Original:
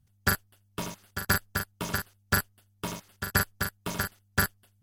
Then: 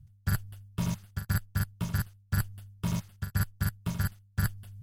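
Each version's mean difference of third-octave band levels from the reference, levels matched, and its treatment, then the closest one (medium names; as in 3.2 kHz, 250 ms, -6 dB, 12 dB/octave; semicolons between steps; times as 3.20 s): 7.0 dB: resonant low shelf 210 Hz +14 dB, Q 1.5; reverse; compression 5:1, threshold -33 dBFS, peak gain reduction 21.5 dB; reverse; trim +5 dB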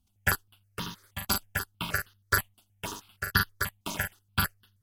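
3.5 dB: peaking EQ 2.9 kHz +7.5 dB 1.5 oct; stepped phaser 6.3 Hz 480–2300 Hz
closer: second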